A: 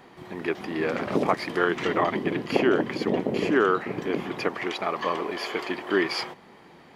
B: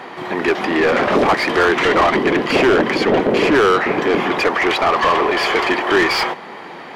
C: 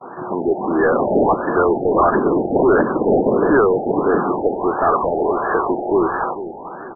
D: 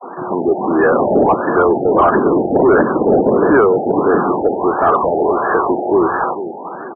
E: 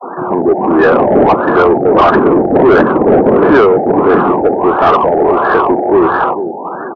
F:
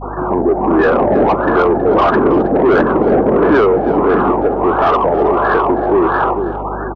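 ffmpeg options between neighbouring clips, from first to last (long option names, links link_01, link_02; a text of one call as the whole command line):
ffmpeg -i in.wav -filter_complex "[0:a]asplit=2[link_01][link_02];[link_02]highpass=frequency=720:poles=1,volume=28dB,asoftclip=type=tanh:threshold=-4.5dB[link_03];[link_01][link_03]amix=inputs=2:normalize=0,lowpass=frequency=2200:poles=1,volume=-6dB" out.wav
ffmpeg -i in.wav -af "aecho=1:1:445|890|1335|1780:0.211|0.0803|0.0305|0.0116,agate=range=-31dB:threshold=-35dB:ratio=16:detection=peak,afftfilt=real='re*lt(b*sr/1024,850*pow(1800/850,0.5+0.5*sin(2*PI*1.5*pts/sr)))':imag='im*lt(b*sr/1024,850*pow(1800/850,0.5+0.5*sin(2*PI*1.5*pts/sr)))':win_size=1024:overlap=0.75" out.wav
ffmpeg -i in.wav -filter_complex "[0:a]highpass=frequency=63:poles=1,asplit=2[link_01][link_02];[link_02]asoftclip=type=tanh:threshold=-13dB,volume=-3.5dB[link_03];[link_01][link_03]amix=inputs=2:normalize=0,afftfilt=real='re*gte(hypot(re,im),0.0447)':imag='im*gte(hypot(re,im),0.0447)':win_size=1024:overlap=0.75" out.wav
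ffmpeg -i in.wav -af "acontrast=60" out.wav
ffmpeg -i in.wav -af "aeval=exprs='val(0)+0.0447*(sin(2*PI*50*n/s)+sin(2*PI*2*50*n/s)/2+sin(2*PI*3*50*n/s)/3+sin(2*PI*4*50*n/s)/4+sin(2*PI*5*50*n/s)/5)':channel_layout=same,alimiter=limit=-5dB:level=0:latency=1:release=258,aecho=1:1:320:0.178,volume=-1dB" out.wav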